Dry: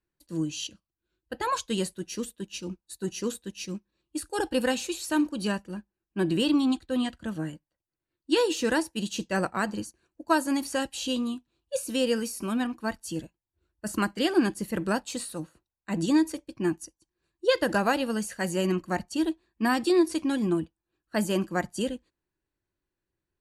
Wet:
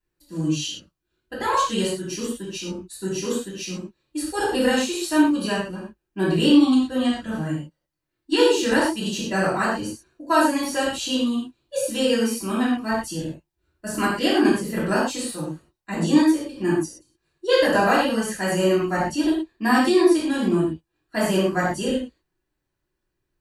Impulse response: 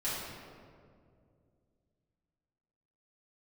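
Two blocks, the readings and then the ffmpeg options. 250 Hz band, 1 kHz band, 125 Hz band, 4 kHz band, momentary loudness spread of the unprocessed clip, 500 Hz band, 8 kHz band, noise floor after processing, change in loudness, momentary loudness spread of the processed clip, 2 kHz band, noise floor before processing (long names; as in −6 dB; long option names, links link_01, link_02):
+6.5 dB, +7.5 dB, +6.0 dB, +6.5 dB, 13 LU, +6.5 dB, +5.0 dB, −80 dBFS, +6.5 dB, 14 LU, +7.0 dB, below −85 dBFS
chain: -filter_complex "[1:a]atrim=start_sample=2205,afade=type=out:start_time=0.18:duration=0.01,atrim=end_sample=8379[link_01];[0:a][link_01]afir=irnorm=-1:irlink=0,volume=2.5dB"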